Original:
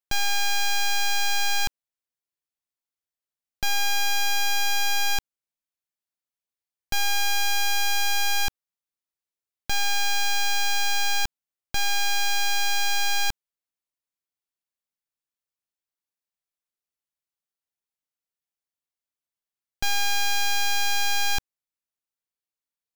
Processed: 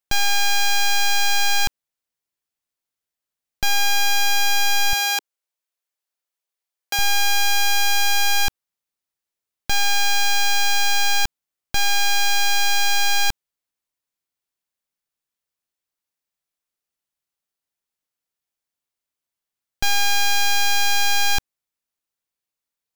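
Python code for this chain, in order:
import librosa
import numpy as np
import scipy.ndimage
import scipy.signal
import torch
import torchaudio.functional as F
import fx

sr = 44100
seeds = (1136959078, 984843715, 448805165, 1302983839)

y = fx.highpass(x, sr, hz=370.0, slope=24, at=(4.93, 6.99))
y = y * 10.0 ** (5.0 / 20.0)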